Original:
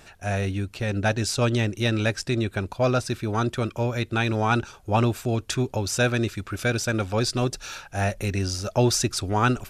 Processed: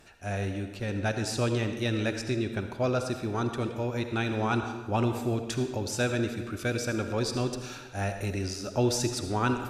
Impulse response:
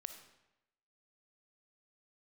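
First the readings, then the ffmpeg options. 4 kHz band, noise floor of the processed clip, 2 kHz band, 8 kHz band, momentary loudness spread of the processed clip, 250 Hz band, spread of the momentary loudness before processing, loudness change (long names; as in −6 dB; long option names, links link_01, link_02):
−6.5 dB, −43 dBFS, −6.0 dB, −6.5 dB, 5 LU, −3.5 dB, 5 LU, −5.0 dB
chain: -filter_complex "[0:a]equalizer=frequency=310:width_type=o:width=1.1:gain=4[link_01];[1:a]atrim=start_sample=2205,asetrate=32634,aresample=44100[link_02];[link_01][link_02]afir=irnorm=-1:irlink=0,volume=-4dB"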